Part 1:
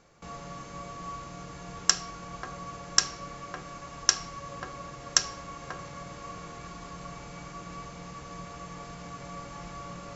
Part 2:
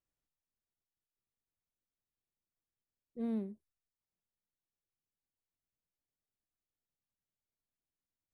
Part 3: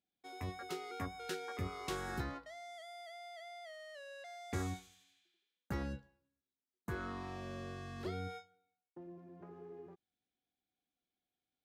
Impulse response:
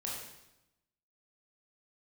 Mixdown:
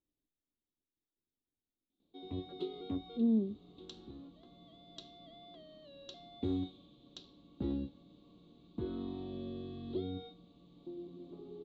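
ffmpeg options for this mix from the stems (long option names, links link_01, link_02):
-filter_complex "[0:a]equalizer=frequency=210:width=1.4:gain=6.5,flanger=delay=3.3:depth=10:regen=-82:speed=0.83:shape=sinusoidal,adelay=2000,volume=-18dB[link_01];[1:a]lowpass=1900,volume=0.5dB,asplit=2[link_02][link_03];[2:a]lowpass=frequency=2200:poles=1,adelay=1900,volume=-1.5dB[link_04];[link_03]apad=whole_len=597286[link_05];[link_04][link_05]sidechaincompress=threshold=-54dB:ratio=8:attack=27:release=1330[link_06];[link_01][link_02][link_06]amix=inputs=3:normalize=0,firequalizer=gain_entry='entry(160,0);entry(280,12);entry(510,-1);entry(1700,-21);entry(3700,13);entry(5300,-18)':delay=0.05:min_phase=1"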